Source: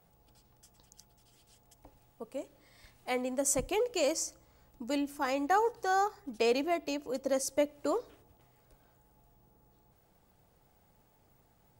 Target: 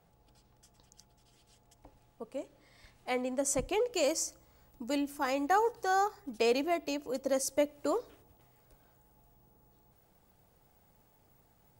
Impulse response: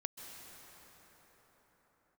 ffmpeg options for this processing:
-af "asetnsamples=n=441:p=0,asendcmd='3.93 highshelf g 3.5',highshelf=f=11k:g=-10"

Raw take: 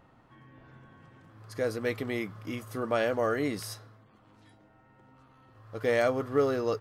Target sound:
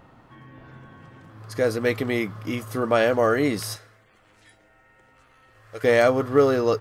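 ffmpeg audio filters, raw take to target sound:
-filter_complex "[0:a]asettb=1/sr,asplit=3[a][b][c];[a]atrim=end=3.764[d];[b]atrim=start=3.76:end=5.84,asetpts=PTS-STARTPTS,afade=t=in:d=0.004:c=qsin,afade=t=out:st=2.076:d=0.004:c=qsin,equalizer=f=125:t=o:w=1:g=-11,equalizer=f=250:t=o:w=1:g=-12,equalizer=f=1k:t=o:w=1:g=-9,equalizer=f=2k:t=o:w=1:g=6,equalizer=f=4k:t=o:w=1:g=-3,equalizer=f=8k:t=o:w=1:g=6[e];[c]atrim=start=5.836[f];[d][e]acrossfade=d=0.004:c1=hsin:c2=qsin[g];[g][f]acrossfade=d=0.004:c1=qsin:c2=hsin,volume=8dB"

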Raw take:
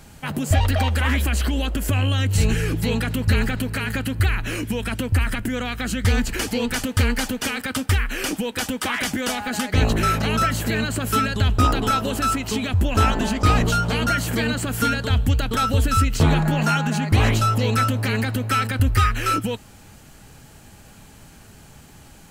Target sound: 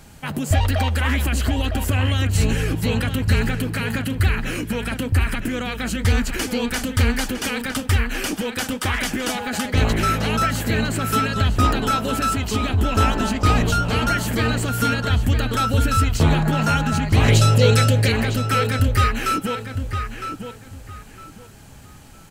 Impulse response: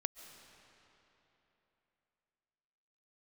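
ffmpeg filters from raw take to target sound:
-filter_complex "[0:a]asettb=1/sr,asplit=3[a][b][c];[a]atrim=end=17.284[d];[b]atrim=start=17.28:end=18.12,asetpts=PTS-STARTPTS,afade=t=in:d=0.004:c=qsin,afade=t=out:st=0.836:d=0.004:c=qsin,equalizer=f=125:t=o:w=1:g=8,equalizer=f=250:t=o:w=1:g=-4,equalizer=f=500:t=o:w=1:g=12,equalizer=f=1k:t=o:w=1:g=-11,equalizer=f=2k:t=o:w=1:g=4,equalizer=f=4k:t=o:w=1:g=6,equalizer=f=8k:t=o:w=1:g=7[e];[c]atrim=start=18.116[f];[d][e]acrossfade=d=0.004:c1=hsin:c2=qsin[g];[g][f]acrossfade=d=0.004:c1=qsin:c2=hsin,asplit=2[h][i];[i]adelay=958,lowpass=f=3.6k:p=1,volume=-7.5dB,asplit=2[j][k];[k]adelay=958,lowpass=f=3.6k:p=1,volume=0.25,asplit=2[l][m];[m]adelay=958,lowpass=f=3.6k:p=1,volume=0.25[n];[h][j][l][n]amix=inputs=4:normalize=0"

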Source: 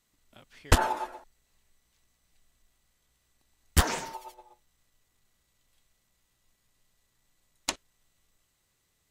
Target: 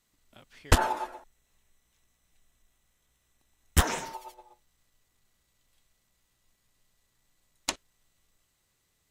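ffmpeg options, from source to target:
-filter_complex "[0:a]asettb=1/sr,asplit=3[a][b][c];[a]atrim=end=1.144[d];[b]atrim=start=1.14:end=4.04,asetpts=PTS-STARTPTS,afade=t=in:d=0.004:c=qsin,afade=t=out:st=2.896:d=0.004:c=qsin,bandreject=f=4.6k:w=6.5[e];[c]atrim=start=4.036[f];[d][e]acrossfade=d=0.004:c1=hsin:c2=qsin[g];[g][f]acrossfade=d=0.004:c1=qsin:c2=hsin"

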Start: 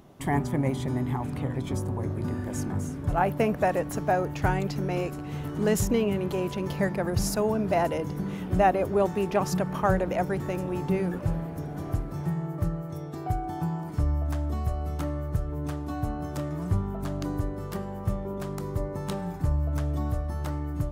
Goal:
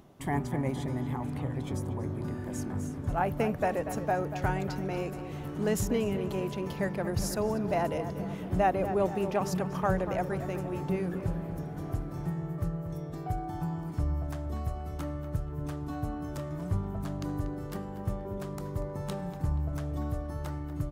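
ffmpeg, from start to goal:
-filter_complex "[0:a]areverse,acompressor=mode=upward:threshold=-34dB:ratio=2.5,areverse,asplit=2[a][b];[b]adelay=238,lowpass=f=2.9k:p=1,volume=-10.5dB,asplit=2[c][d];[d]adelay=238,lowpass=f=2.9k:p=1,volume=0.53,asplit=2[e][f];[f]adelay=238,lowpass=f=2.9k:p=1,volume=0.53,asplit=2[g][h];[h]adelay=238,lowpass=f=2.9k:p=1,volume=0.53,asplit=2[i][j];[j]adelay=238,lowpass=f=2.9k:p=1,volume=0.53,asplit=2[k][l];[l]adelay=238,lowpass=f=2.9k:p=1,volume=0.53[m];[a][c][e][g][i][k][m]amix=inputs=7:normalize=0,volume=-4.5dB"

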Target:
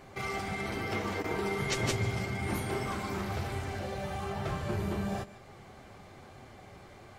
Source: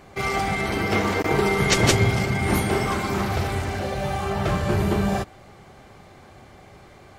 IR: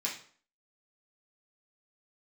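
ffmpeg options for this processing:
-filter_complex "[0:a]acompressor=threshold=-40dB:ratio=1.5,flanger=delay=7.5:depth=3.4:regen=-51:speed=1.1:shape=sinusoidal,asplit=2[a][b];[1:a]atrim=start_sample=2205,adelay=147[c];[b][c]afir=irnorm=-1:irlink=0,volume=-19dB[d];[a][d]amix=inputs=2:normalize=0"

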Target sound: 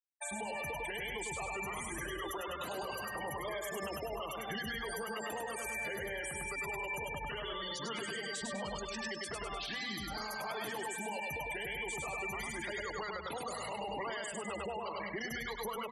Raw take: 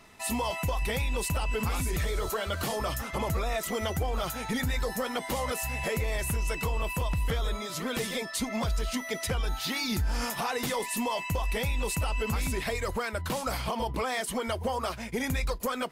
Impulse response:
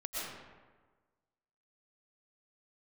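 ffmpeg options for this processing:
-filter_complex "[0:a]asetrate=39289,aresample=44100,atempo=1.12246,afftfilt=real='re*gte(hypot(re,im),0.0251)':imag='im*gte(hypot(re,im),0.0251)':win_size=1024:overlap=0.75,aemphasis=mode=production:type=riaa,acrossover=split=140|480|2200[a][b][c][d];[a]acompressor=threshold=-46dB:ratio=4[e];[b]acompressor=threshold=-37dB:ratio=4[f];[c]acompressor=threshold=-34dB:ratio=4[g];[d]acompressor=threshold=-42dB:ratio=4[h];[e][f][g][h]amix=inputs=4:normalize=0,equalizer=f=13k:w=5.5:g=-10.5,bandreject=f=60:t=h:w=6,bandreject=f=120:t=h:w=6,bandreject=f=180:t=h:w=6,bandreject=f=240:t=h:w=6,bandreject=f=300:t=h:w=6,asplit=2[i][j];[j]aecho=0:1:101|202|303|404|505:0.631|0.265|0.111|0.0467|0.0196[k];[i][k]amix=inputs=2:normalize=0,alimiter=level_in=8dB:limit=-24dB:level=0:latency=1:release=111,volume=-8dB,volume=1dB"

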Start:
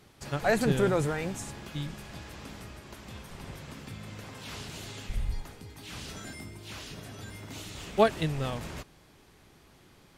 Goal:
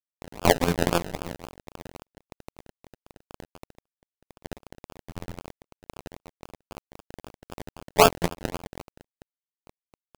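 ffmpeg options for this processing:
-filter_complex "[0:a]asplit=3[a][b][c];[a]afade=t=out:st=3.71:d=0.02[d];[b]equalizer=f=120:w=0.86:g=-13.5,afade=t=in:st=3.71:d=0.02,afade=t=out:st=4.31:d=0.02[e];[c]afade=t=in:st=4.31:d=0.02[f];[d][e][f]amix=inputs=3:normalize=0,asettb=1/sr,asplit=3[g][h][i];[g]atrim=end=6.524[j];[h]atrim=start=6.52:end=7.8,asetpts=PTS-STARTPTS,afade=t=in:d=0.004:c=qsin,afade=t=out:st=1.276:d=0.004:c=qsin,bandreject=f=50:t=h:w=6,bandreject=f=100:t=h:w=6,bandreject=f=150:t=h:w=6,bandreject=f=200:t=h:w=6,bandreject=f=250:t=h:w=6,bandreject=f=300:t=h:w=6[k];[i]atrim=start=7.796[l];[j][k]acrossfade=d=0.004:c1=hsin:c2=qsin[m];[m][l]acrossfade=d=0.004:c1=qsin:c2=hsin,adynamicsmooth=sensitivity=2:basefreq=1.5k,adynamicequalizer=threshold=0.0141:dfrequency=380:dqfactor=0.76:tfrequency=380:tqfactor=0.76:attack=5:release=100:ratio=0.375:range=2:mode=cutabove:tftype=bell,asplit=2[n][o];[o]adelay=489.8,volume=-21dB,highshelf=f=4k:g=-11[p];[n][p]amix=inputs=2:normalize=0,afftfilt=real='hypot(re,im)*cos(PI*b)':imag='0':win_size=2048:overlap=0.75,acrusher=bits=7:mix=0:aa=0.000001,lowpass=f=8.6k:w=0.5412,lowpass=f=8.6k:w=1.3066,crystalizer=i=7:c=0,acrusher=samples=31:mix=1:aa=0.000001:lfo=1:lforange=18.6:lforate=3.8,aeval=exprs='sgn(val(0))*max(abs(val(0))-0.0211,0)':c=same,volume=9dB"

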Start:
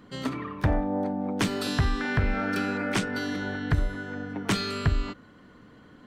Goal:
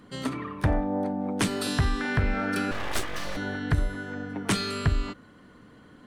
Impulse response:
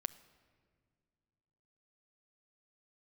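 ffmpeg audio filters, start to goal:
-filter_complex "[0:a]equalizer=f=9.6k:t=o:w=0.46:g=9,asettb=1/sr,asplit=3[a][b][c];[a]atrim=end=2.714[d];[b]atrim=start=2.71:end=3.37,asetpts=PTS-STARTPTS,afade=t=in:d=0.004:c=qsin,afade=t=out:st=0.656:d=0.004:c=qsin,aeval=exprs='abs(val(0))':c=same[e];[c]atrim=start=3.366[f];[d][e]acrossfade=d=0.004:c1=hsin:c2=qsin[g];[g][f]acrossfade=d=0.004:c1=qsin:c2=hsin"

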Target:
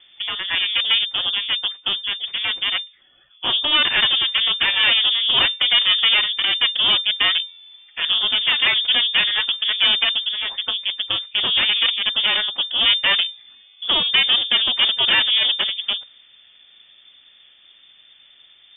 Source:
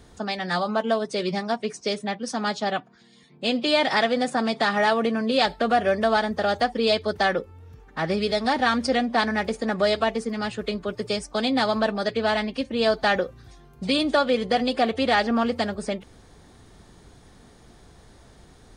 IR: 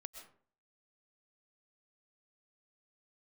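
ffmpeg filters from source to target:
-af "aeval=exprs='0.376*(cos(1*acos(clip(val(0)/0.376,-1,1)))-cos(1*PI/2))+0.0668*(cos(6*acos(clip(val(0)/0.376,-1,1)))-cos(6*PI/2))+0.015*(cos(7*acos(clip(val(0)/0.376,-1,1)))-cos(7*PI/2))':c=same,lowpass=f=3.1k:t=q:w=0.5098,lowpass=f=3.1k:t=q:w=0.6013,lowpass=f=3.1k:t=q:w=0.9,lowpass=f=3.1k:t=q:w=2.563,afreqshift=-3600,volume=3dB"

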